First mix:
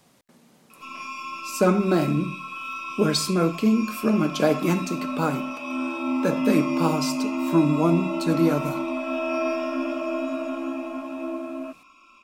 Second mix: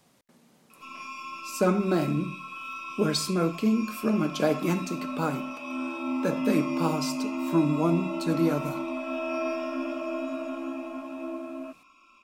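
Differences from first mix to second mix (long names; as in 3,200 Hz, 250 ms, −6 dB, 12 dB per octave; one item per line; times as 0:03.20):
speech −4.0 dB
background −4.5 dB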